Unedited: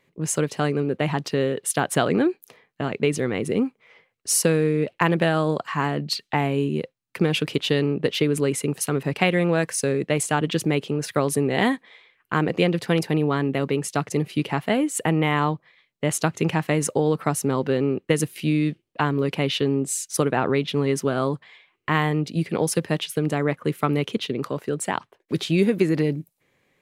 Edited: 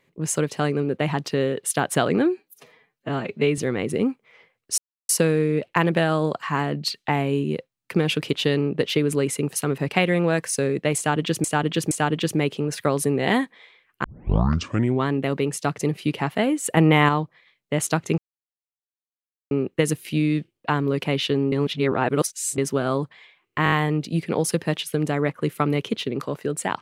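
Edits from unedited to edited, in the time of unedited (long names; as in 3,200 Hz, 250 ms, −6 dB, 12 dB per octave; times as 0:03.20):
0:02.26–0:03.14: time-stretch 1.5×
0:04.34: splice in silence 0.31 s
0:10.22–0:10.69: repeat, 3 plays
0:12.35: tape start 1.03 s
0:15.08–0:15.40: clip gain +5 dB
0:16.49–0:17.82: silence
0:19.83–0:20.89: reverse
0:21.95: stutter 0.02 s, 5 plays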